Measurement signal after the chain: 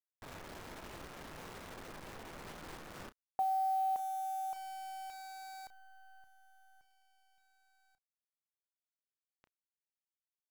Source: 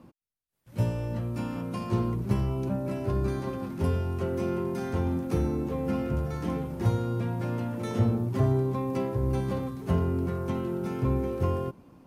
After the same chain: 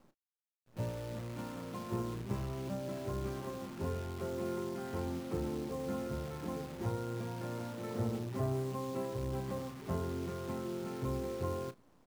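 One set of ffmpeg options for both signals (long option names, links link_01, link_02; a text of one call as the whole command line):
ffmpeg -i in.wav -filter_complex "[0:a]lowpass=1800,lowshelf=frequency=160:gain=-8.5,acrusher=bits=8:dc=4:mix=0:aa=0.000001,asplit=2[link_01][link_02];[link_02]adelay=32,volume=-13dB[link_03];[link_01][link_03]amix=inputs=2:normalize=0,volume=-6.5dB" out.wav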